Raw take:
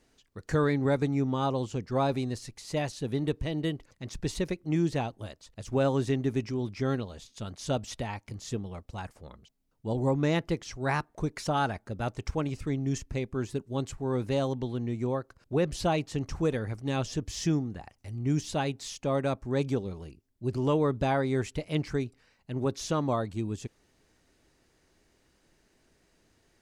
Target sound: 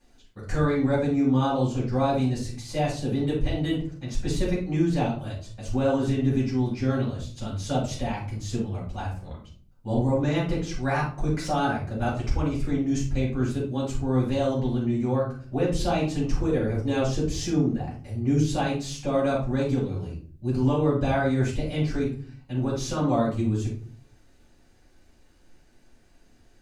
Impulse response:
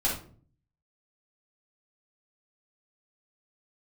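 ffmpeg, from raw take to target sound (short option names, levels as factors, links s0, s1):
-filter_complex "[0:a]asettb=1/sr,asplit=3[s0][s1][s2];[s0]atrim=end=16.334[s3];[s1]atrim=start=16.33:end=18.49,asetpts=PTS-STARTPTS,afade=t=in:d=0.004:c=qsin,afade=t=out:st=2.156:d=0.004:c=qsin,equalizer=f=450:w=2.2:g=7.5[s4];[s2]atrim=start=18.486[s5];[s3][s4]acrossfade=d=0.004:c1=hsin:c2=qsin[s6];[s6][s5]acrossfade=d=0.004:c1=qsin:c2=hsin,alimiter=limit=0.106:level=0:latency=1:release=159[s7];[1:a]atrim=start_sample=2205[s8];[s7][s8]afir=irnorm=-1:irlink=0,volume=0.596"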